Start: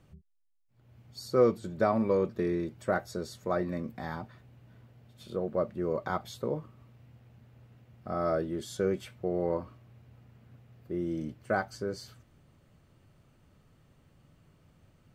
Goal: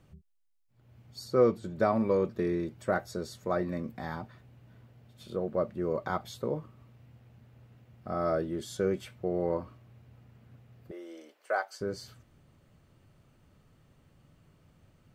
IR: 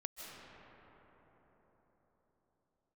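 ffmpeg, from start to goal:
-filter_complex "[0:a]asettb=1/sr,asplit=3[link_01][link_02][link_03];[link_01]atrim=end=1.244[link_04];[link_02]atrim=start=1.24:end=1.76,asetpts=PTS-STARTPTS,afade=type=in:duration=0.004:curve=qsin,afade=type=out:start_time=0.516:duration=0.004:curve=qsin,highshelf=frequency=4700:gain=-5[link_05];[link_03]atrim=start=1.756[link_06];[link_04][link_05]acrossfade=duration=0.004:curve1=hsin:curve2=qsin[link_07];[link_07][link_06]acrossfade=duration=0.004:curve1=qsin:curve2=hsin,asettb=1/sr,asplit=3[link_08][link_09][link_10];[link_08]atrim=end=10.914[link_11];[link_09]atrim=start=10.91:end=11.81,asetpts=PTS-STARTPTS,afade=type=in:duration=0.004:curve=qsin,afade=type=out:start_time=0.896:duration=0.004:curve=qsin,highpass=frequency=480:width=0.5412,highpass=frequency=480:width=1.3066[link_12];[link_10]atrim=start=11.806[link_13];[link_11][link_12]acrossfade=duration=0.004:curve1=hsin:curve2=qsin[link_14];[link_14][link_13]acrossfade=duration=0.004:curve1=qsin:curve2=hsin"

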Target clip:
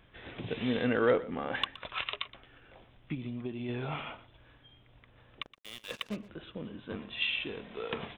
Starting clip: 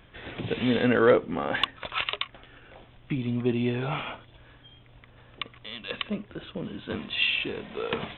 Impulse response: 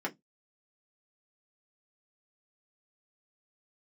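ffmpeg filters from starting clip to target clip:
-filter_complex "[0:a]asplit=3[link_01][link_02][link_03];[link_01]afade=type=out:start_time=3.14:duration=0.02[link_04];[link_02]acompressor=threshold=-28dB:ratio=6,afade=type=in:start_time=3.14:duration=0.02,afade=type=out:start_time=3.68:duration=0.02[link_05];[link_03]afade=type=in:start_time=3.68:duration=0.02[link_06];[link_04][link_05][link_06]amix=inputs=3:normalize=0,asplit=3[link_07][link_08][link_09];[link_07]afade=type=out:start_time=5.42:duration=0.02[link_10];[link_08]acrusher=bits=5:mix=0:aa=0.5,afade=type=in:start_time=5.42:duration=0.02,afade=type=out:start_time=6.15:duration=0.02[link_11];[link_09]afade=type=in:start_time=6.15:duration=0.02[link_12];[link_10][link_11][link_12]amix=inputs=3:normalize=0,asettb=1/sr,asplit=3[link_13][link_14][link_15];[link_13]atrim=end=6.694[link_16];[link_14]atrim=start=6.69:end=7.21,asetpts=PTS-STARTPTS,afade=type=in:duration=0.004:curve=qsin,afade=type=out:start_time=0.516:duration=0.004:curve=qsin,highshelf=frequency=3700:gain=-10[link_17];[link_15]atrim=start=7.206[link_18];[link_16][link_17]acrossfade=duration=0.004:curve1=hsin:curve2=qsin[link_19];[link_19][link_18]acrossfade=duration=0.004:curve1=qsin:curve2=hsin,aecho=1:1:120:0.133,volume=-6.5dB"

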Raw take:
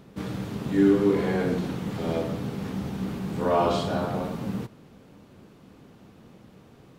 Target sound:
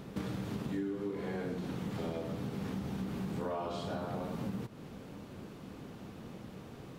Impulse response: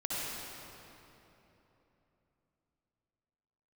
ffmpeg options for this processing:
-af "acompressor=threshold=-38dB:ratio=10,volume=3.5dB"

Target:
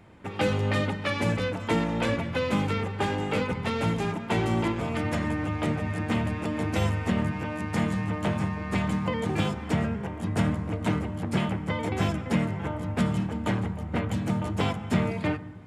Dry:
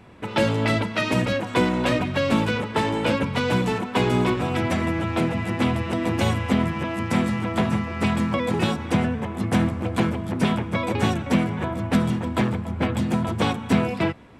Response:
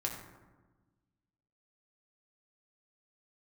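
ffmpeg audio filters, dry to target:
-filter_complex "[0:a]highshelf=frequency=7000:gain=5,asplit=2[link_01][link_02];[1:a]atrim=start_sample=2205,lowpass=5100[link_03];[link_02][link_03]afir=irnorm=-1:irlink=0,volume=-11dB[link_04];[link_01][link_04]amix=inputs=2:normalize=0,asetrate=40517,aresample=44100,volume=-7dB"

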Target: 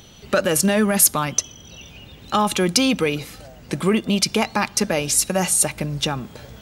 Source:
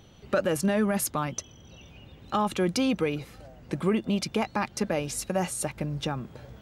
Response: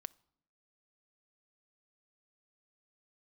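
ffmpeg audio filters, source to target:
-filter_complex "[0:a]highshelf=frequency=2600:gain=11,asplit=2[link_01][link_02];[1:a]atrim=start_sample=2205[link_03];[link_02][link_03]afir=irnorm=-1:irlink=0,volume=19dB[link_04];[link_01][link_04]amix=inputs=2:normalize=0,volume=-10.5dB"

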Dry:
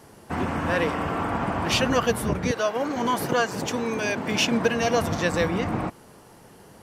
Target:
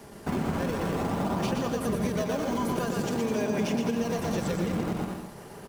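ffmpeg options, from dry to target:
ffmpeg -i in.wav -filter_complex "[0:a]acrossover=split=99|860|4900[link_01][link_02][link_03][link_04];[link_01]acompressor=threshold=-43dB:ratio=4[link_05];[link_02]acompressor=threshold=-25dB:ratio=4[link_06];[link_03]acompressor=threshold=-41dB:ratio=4[link_07];[link_04]acompressor=threshold=-41dB:ratio=4[link_08];[link_05][link_06][link_07][link_08]amix=inputs=4:normalize=0,asplit=2[link_09][link_10];[link_10]acrusher=samples=27:mix=1:aa=0.000001:lfo=1:lforange=43.2:lforate=0.41,volume=-6.5dB[link_11];[link_09][link_11]amix=inputs=2:normalize=0,atempo=1.2,asplit=2[link_12][link_13];[link_13]aecho=0:1:120|210|277.5|328.1|366.1:0.631|0.398|0.251|0.158|0.1[link_14];[link_12][link_14]amix=inputs=2:normalize=0,acompressor=threshold=-25dB:ratio=6,aecho=1:1:5:0.32" out.wav

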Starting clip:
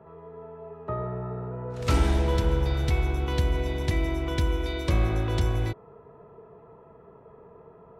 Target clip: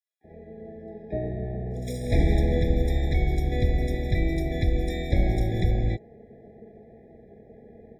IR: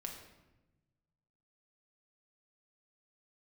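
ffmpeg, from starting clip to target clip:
-filter_complex "[0:a]acrossover=split=4900[link_01][link_02];[link_01]adelay=240[link_03];[link_03][link_02]amix=inputs=2:normalize=0,asplit=4[link_04][link_05][link_06][link_07];[link_05]asetrate=22050,aresample=44100,atempo=2,volume=-3dB[link_08];[link_06]asetrate=52444,aresample=44100,atempo=0.840896,volume=-17dB[link_09];[link_07]asetrate=88200,aresample=44100,atempo=0.5,volume=-15dB[link_10];[link_04][link_08][link_09][link_10]amix=inputs=4:normalize=0,afftfilt=real='re*eq(mod(floor(b*sr/1024/820),2),0)':imag='im*eq(mod(floor(b*sr/1024/820),2),0)':win_size=1024:overlap=0.75"

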